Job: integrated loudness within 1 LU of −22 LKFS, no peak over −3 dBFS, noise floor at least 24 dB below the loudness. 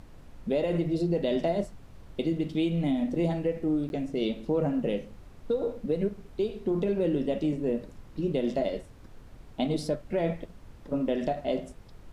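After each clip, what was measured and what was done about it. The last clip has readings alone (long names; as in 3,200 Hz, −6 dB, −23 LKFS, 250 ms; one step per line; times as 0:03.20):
number of dropouts 1; longest dropout 11 ms; background noise floor −50 dBFS; target noise floor −54 dBFS; integrated loudness −30.0 LKFS; sample peak −15.5 dBFS; target loudness −22.0 LKFS
→ repair the gap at 0:03.89, 11 ms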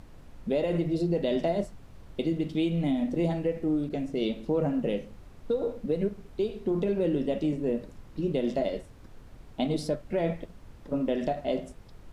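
number of dropouts 0; background noise floor −50 dBFS; target noise floor −54 dBFS
→ noise reduction from a noise print 6 dB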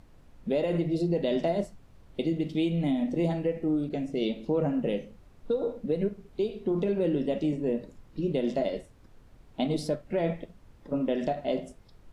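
background noise floor −56 dBFS; integrated loudness −30.0 LKFS; sample peak −15.5 dBFS; target loudness −22.0 LKFS
→ level +8 dB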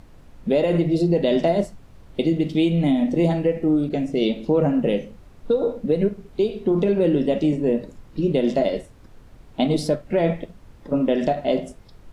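integrated loudness −22.0 LKFS; sample peak −7.5 dBFS; background noise floor −48 dBFS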